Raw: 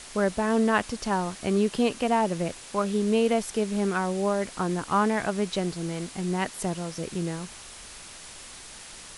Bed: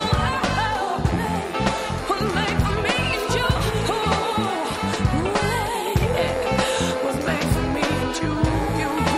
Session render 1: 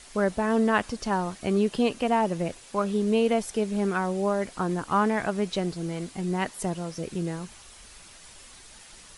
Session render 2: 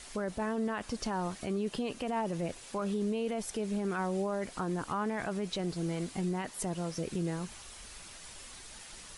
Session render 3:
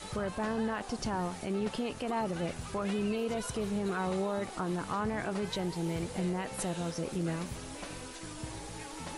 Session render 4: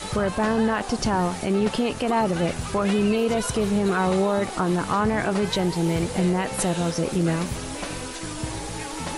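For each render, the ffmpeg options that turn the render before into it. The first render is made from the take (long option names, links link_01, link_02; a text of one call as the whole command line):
ffmpeg -i in.wav -af "afftdn=noise_reduction=7:noise_floor=-44" out.wav
ffmpeg -i in.wav -af "acompressor=threshold=-33dB:ratio=1.5,alimiter=level_in=1dB:limit=-24dB:level=0:latency=1:release=17,volume=-1dB" out.wav
ffmpeg -i in.wav -i bed.wav -filter_complex "[1:a]volume=-22dB[link_01];[0:a][link_01]amix=inputs=2:normalize=0" out.wav
ffmpeg -i in.wav -af "volume=11dB" out.wav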